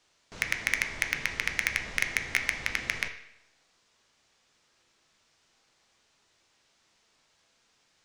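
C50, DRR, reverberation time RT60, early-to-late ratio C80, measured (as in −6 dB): 10.0 dB, 5.0 dB, 0.80 s, 12.0 dB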